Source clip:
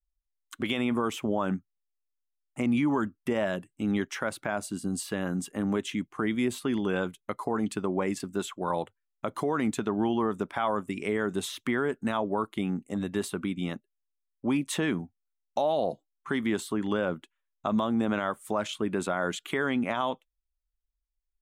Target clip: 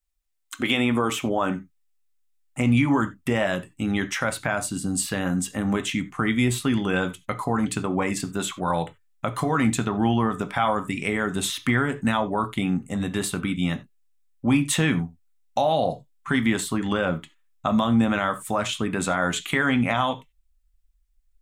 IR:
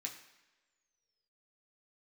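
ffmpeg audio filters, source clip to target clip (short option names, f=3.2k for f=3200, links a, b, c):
-filter_complex "[0:a]asubboost=boost=9:cutoff=100,asplit=2[a][b];[1:a]atrim=start_sample=2205,atrim=end_sample=4410[c];[b][c]afir=irnorm=-1:irlink=0,volume=2.5dB[d];[a][d]amix=inputs=2:normalize=0,volume=3dB"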